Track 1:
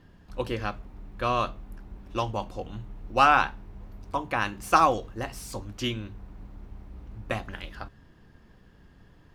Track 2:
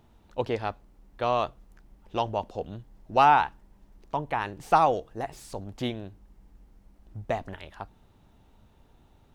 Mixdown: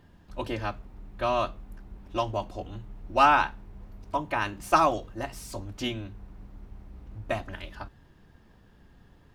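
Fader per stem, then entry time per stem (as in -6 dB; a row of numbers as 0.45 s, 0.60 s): -2.5 dB, -4.5 dB; 0.00 s, 0.00 s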